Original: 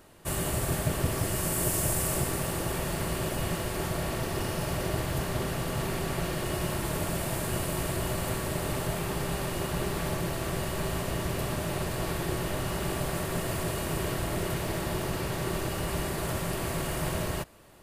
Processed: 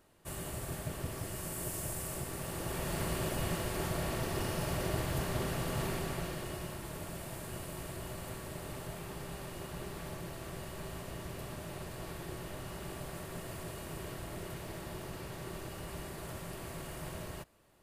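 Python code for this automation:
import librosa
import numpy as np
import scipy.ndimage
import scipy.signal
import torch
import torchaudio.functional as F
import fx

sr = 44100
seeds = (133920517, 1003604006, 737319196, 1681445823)

y = fx.gain(x, sr, db=fx.line((2.26, -11.0), (2.98, -4.0), (5.86, -4.0), (6.78, -12.0)))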